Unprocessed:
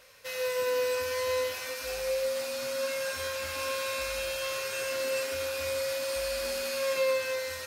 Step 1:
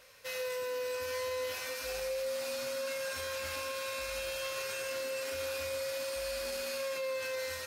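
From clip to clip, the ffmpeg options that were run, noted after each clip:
-af "alimiter=level_in=3dB:limit=-24dB:level=0:latency=1:release=16,volume=-3dB,volume=-2dB"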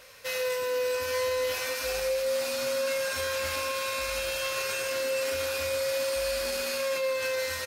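-filter_complex "[0:a]asplit=2[a][b];[b]adelay=130,highpass=300,lowpass=3.4k,asoftclip=type=hard:threshold=-37dB,volume=-12dB[c];[a][c]amix=inputs=2:normalize=0,volume=7dB"

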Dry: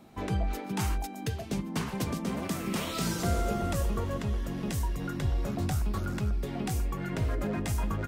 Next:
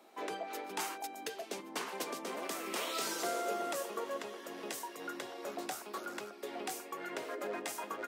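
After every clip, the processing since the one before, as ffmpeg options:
-af "highpass=f=360:w=0.5412,highpass=f=360:w=1.3066,volume=-2dB"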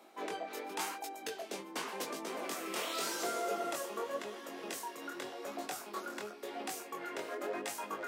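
-af "areverse,acompressor=mode=upward:threshold=-42dB:ratio=2.5,areverse,flanger=delay=18:depth=7:speed=0.9,volume=3dB"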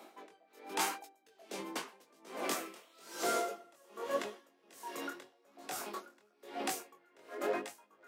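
-af "aeval=exprs='val(0)*pow(10,-31*(0.5-0.5*cos(2*PI*1.2*n/s))/20)':c=same,volume=5dB"

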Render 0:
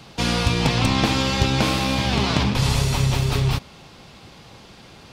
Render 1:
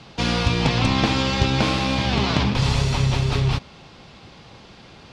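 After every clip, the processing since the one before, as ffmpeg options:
-af "lowpass=5.8k"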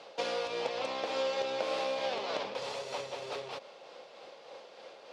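-af "tremolo=f=3.3:d=0.34,acompressor=threshold=-25dB:ratio=6,highpass=f=530:t=q:w=4.9,volume=-7dB"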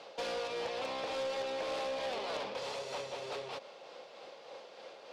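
-af "asoftclip=type=tanh:threshold=-32dB"

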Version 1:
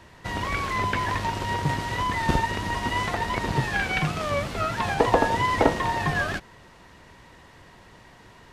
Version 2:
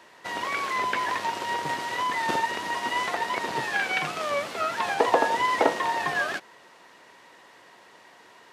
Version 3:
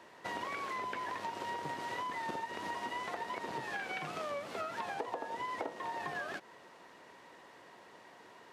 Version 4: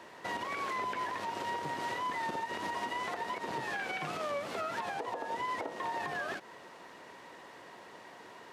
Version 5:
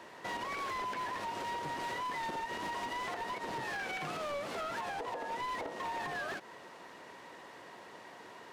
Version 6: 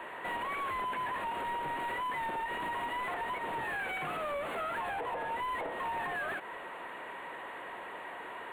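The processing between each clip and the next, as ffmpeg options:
-af "highpass=380"
-af "tiltshelf=f=1.1k:g=3.5,acompressor=threshold=-32dB:ratio=10,volume=-4dB"
-af "alimiter=level_in=8dB:limit=-24dB:level=0:latency=1:release=75,volume=-8dB,volume=5dB"
-af "asoftclip=type=hard:threshold=-34.5dB"
-filter_complex "[0:a]asplit=2[a][b];[b]highpass=f=720:p=1,volume=15dB,asoftclip=type=tanh:threshold=-34dB[c];[a][c]amix=inputs=2:normalize=0,lowpass=f=5.1k:p=1,volume=-6dB,asuperstop=centerf=5400:order=4:qfactor=0.85,volume=2dB"

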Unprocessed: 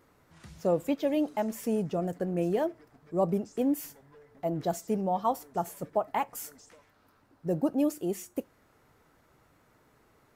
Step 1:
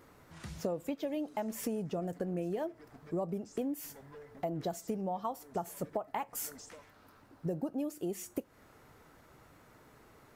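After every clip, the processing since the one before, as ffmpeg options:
-af "acompressor=threshold=-37dB:ratio=10,volume=4.5dB"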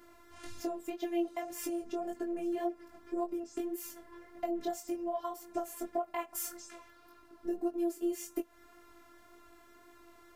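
-af "afftfilt=real='hypot(re,im)*cos(PI*b)':imag='0':win_size=512:overlap=0.75,flanger=delay=19.5:depth=3.2:speed=1.8,volume=7.5dB"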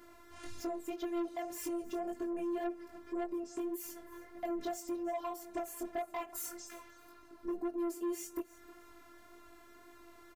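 -af "asoftclip=type=tanh:threshold=-32.5dB,aecho=1:1:313|626:0.106|0.0297,volume=1dB"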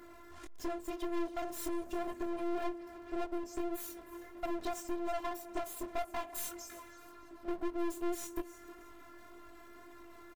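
-filter_complex "[0:a]aeval=exprs='clip(val(0),-1,0.00299)':c=same,asplit=2[a][b];[b]adelay=414,volume=-19dB,highshelf=f=4k:g=-9.32[c];[a][c]amix=inputs=2:normalize=0,volume=4.5dB"

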